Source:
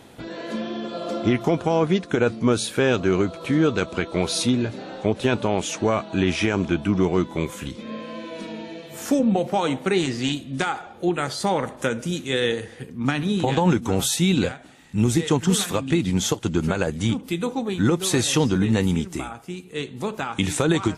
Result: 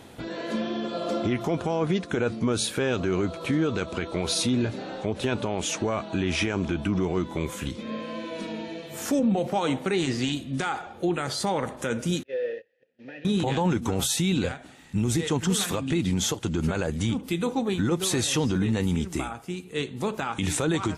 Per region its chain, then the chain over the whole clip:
12.23–13.25 s: one-bit delta coder 32 kbps, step -37.5 dBFS + gate -30 dBFS, range -22 dB + vowel filter e
whole clip: peaking EQ 79 Hz +4.5 dB 0.35 oct; peak limiter -16 dBFS

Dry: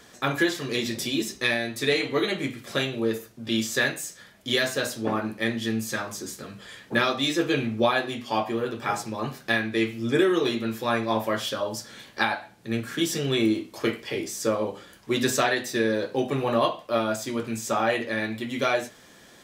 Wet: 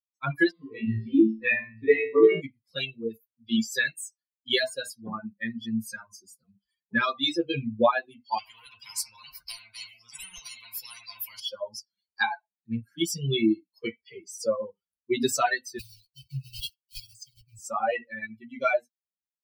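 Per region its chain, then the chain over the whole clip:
0.51–2.41 s: distance through air 450 m + flutter echo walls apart 3.1 m, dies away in 0.82 s
8.38–11.40 s: treble shelf 2.2 kHz -9 dB + spectrum-flattening compressor 10:1
15.79–17.59 s: block-companded coder 3-bit + inverse Chebyshev band-stop 270–1400 Hz + treble shelf 11 kHz -6 dB
whole clip: expander on every frequency bin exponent 3; band-stop 6.6 kHz, Q 10; trim +5.5 dB

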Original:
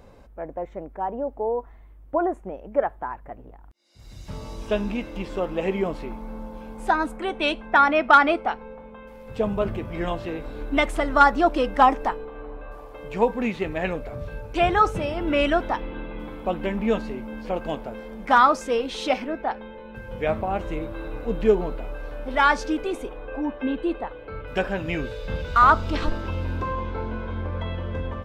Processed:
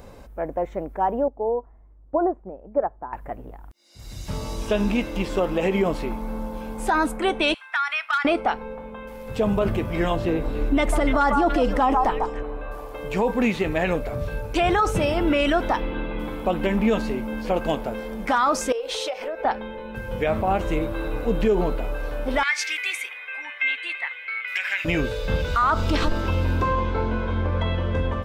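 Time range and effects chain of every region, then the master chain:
1.28–3.13 s: low-pass 1 kHz + upward expansion, over -34 dBFS
7.54–8.25 s: high-pass 1.3 kHz 24 dB/octave + compression 3:1, threshold -29 dBFS
10.16–12.43 s: tilt shelf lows +4 dB, about 750 Hz + repeats whose band climbs or falls 145 ms, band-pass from 950 Hz, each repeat 1.4 oct, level -6 dB
18.72–19.45 s: resonant low shelf 350 Hz -11 dB, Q 3 + compression 8:1, threshold -31 dBFS
22.43–24.85 s: resonant high-pass 2.1 kHz, resonance Q 9.4 + compression 10:1, threshold -24 dBFS
whole clip: treble shelf 6.2 kHz +8 dB; peak limiter -17.5 dBFS; trim +5.5 dB

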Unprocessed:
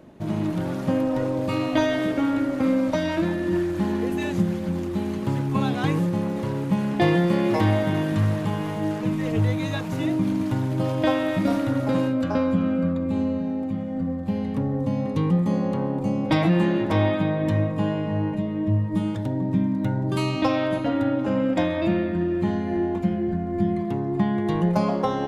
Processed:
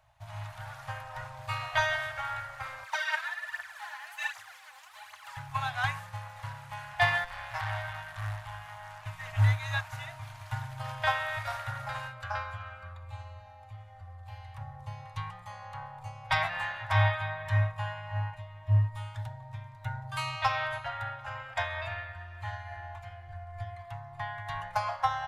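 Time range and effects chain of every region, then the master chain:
2.83–5.37 s: high-pass 990 Hz + phaser 1.3 Hz, delay 4 ms, feedback 64%
7.24–9.06 s: hum notches 50/100/150/200/250/300/350/400/450 Hz + valve stage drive 23 dB, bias 0.65
whole clip: elliptic band-stop 110–740 Hz, stop band 40 dB; dynamic bell 1.6 kHz, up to +8 dB, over -49 dBFS, Q 1.7; upward expansion 1.5:1, over -36 dBFS

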